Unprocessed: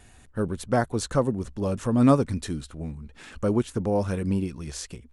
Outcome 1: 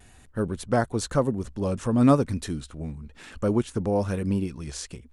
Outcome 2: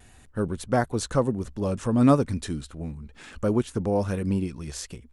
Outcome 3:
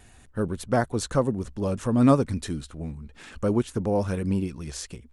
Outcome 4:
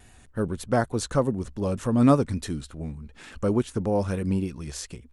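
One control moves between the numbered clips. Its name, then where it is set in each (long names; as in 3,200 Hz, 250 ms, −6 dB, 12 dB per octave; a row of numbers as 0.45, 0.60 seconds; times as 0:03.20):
pitch vibrato, speed: 1, 1.5, 15, 3.4 Hertz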